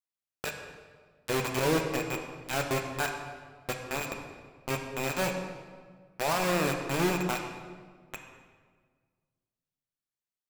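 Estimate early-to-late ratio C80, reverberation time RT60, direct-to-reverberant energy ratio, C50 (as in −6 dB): 6.5 dB, 1.6 s, 3.0 dB, 5.0 dB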